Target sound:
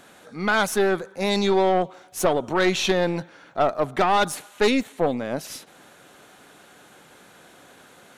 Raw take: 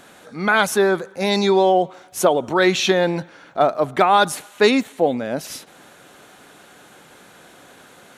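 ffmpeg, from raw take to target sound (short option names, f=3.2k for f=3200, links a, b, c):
-af "aeval=exprs='(tanh(3.55*val(0)+0.5)-tanh(0.5))/3.55':c=same,volume=-1.5dB"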